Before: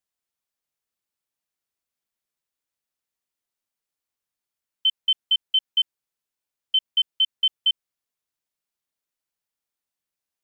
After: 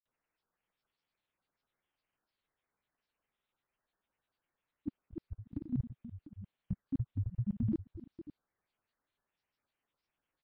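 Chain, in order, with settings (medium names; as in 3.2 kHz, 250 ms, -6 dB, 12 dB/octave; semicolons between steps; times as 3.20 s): delay 564 ms -13.5 dB; frequency inversion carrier 2.9 kHz; granulator 100 ms, grains 20 per s, spray 63 ms, pitch spread up and down by 12 st; trim +7 dB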